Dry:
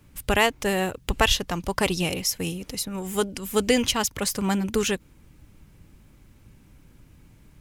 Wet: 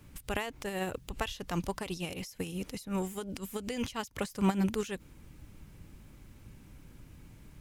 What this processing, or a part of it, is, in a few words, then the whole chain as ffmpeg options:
de-esser from a sidechain: -filter_complex "[0:a]asplit=2[s0][s1];[s1]highpass=f=4300:w=0.5412,highpass=f=4300:w=1.3066,apad=whole_len=335599[s2];[s0][s2]sidechaincompress=threshold=0.00631:ratio=10:attack=1.8:release=75"

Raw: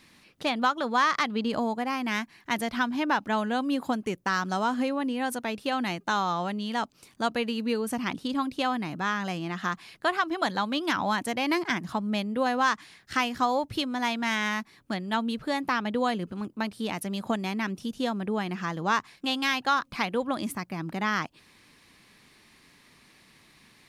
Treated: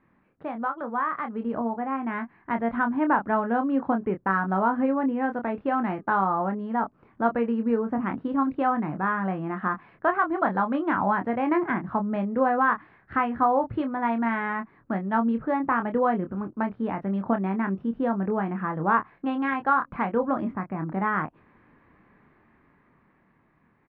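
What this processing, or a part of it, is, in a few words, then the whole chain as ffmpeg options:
action camera in a waterproof case: -filter_complex "[0:a]asplit=3[s0][s1][s2];[s0]afade=t=out:st=6.25:d=0.02[s3];[s1]adynamicequalizer=threshold=0.00398:dfrequency=2900:dqfactor=1.1:tfrequency=2900:tqfactor=1.1:attack=5:release=100:ratio=0.375:range=3:mode=cutabove:tftype=bell,afade=t=in:st=6.25:d=0.02,afade=t=out:st=8.05:d=0.02[s4];[s2]afade=t=in:st=8.05:d=0.02[s5];[s3][s4][s5]amix=inputs=3:normalize=0,lowpass=f=1600:w=0.5412,lowpass=f=1600:w=1.3066,asplit=2[s6][s7];[s7]adelay=26,volume=0.447[s8];[s6][s8]amix=inputs=2:normalize=0,dynaudnorm=f=350:g=11:m=2.51,volume=0.596" -ar 48000 -c:a aac -b:a 96k

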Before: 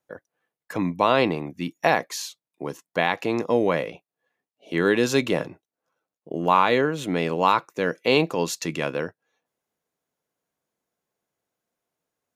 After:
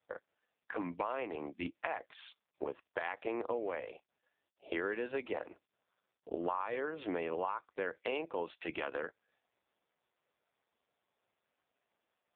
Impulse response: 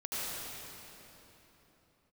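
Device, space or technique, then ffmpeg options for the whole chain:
voicemail: -af "highpass=390,lowpass=3000,acompressor=threshold=0.0251:ratio=10" -ar 8000 -c:a libopencore_amrnb -b:a 4750

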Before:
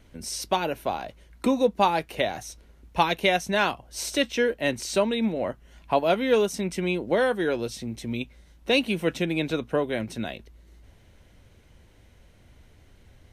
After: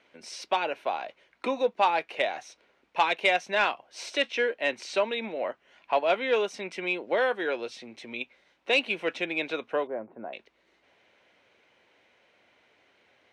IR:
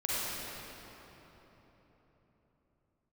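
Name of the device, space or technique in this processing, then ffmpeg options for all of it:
intercom: -filter_complex "[0:a]asettb=1/sr,asplit=3[s0][s1][s2];[s0]atrim=end=9.874[s3];[s1]atrim=start=9.87:end=10.33,asetpts=PTS-STARTPTS,afade=t=in:d=0.004:c=qsin,afade=t=out:st=0.456:d=0.004:c=qsin,lowpass=f=1100:w=0.5412,lowpass=f=1100:w=1.3066[s4];[s2]atrim=start=10.326[s5];[s3][s4]acrossfade=d=0.004:c1=hsin:c2=qsin[s6];[s6][s5]acrossfade=d=0.004:c1=qsin:c2=hsin,highpass=500,lowpass=3800,equalizer=f=2400:t=o:w=0.34:g=4.5,asoftclip=type=tanh:threshold=0.266"

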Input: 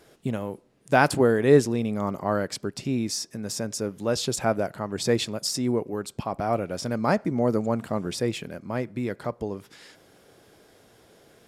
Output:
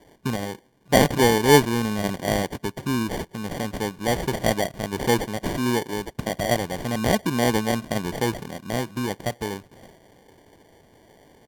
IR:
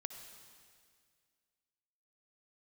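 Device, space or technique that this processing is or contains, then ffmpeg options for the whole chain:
crushed at another speed: -af "asetrate=55125,aresample=44100,acrusher=samples=27:mix=1:aa=0.000001,asetrate=35280,aresample=44100,volume=1.26"

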